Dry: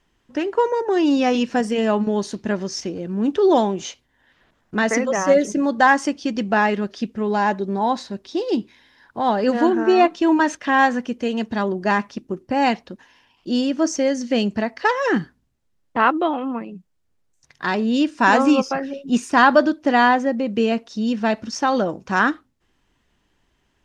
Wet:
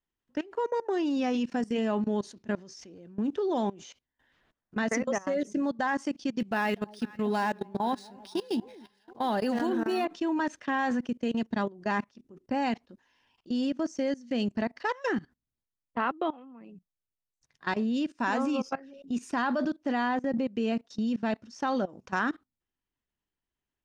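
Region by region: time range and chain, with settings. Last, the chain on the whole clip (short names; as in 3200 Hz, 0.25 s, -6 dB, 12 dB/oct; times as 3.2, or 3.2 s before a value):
6.4–10.05 high shelf 3000 Hz +11.5 dB + echo with dull and thin repeats by turns 0.243 s, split 930 Hz, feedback 63%, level -13.5 dB + decimation joined by straight lines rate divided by 3×
whole clip: dynamic EQ 240 Hz, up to +5 dB, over -33 dBFS, Q 4.7; level quantiser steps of 21 dB; gain -6.5 dB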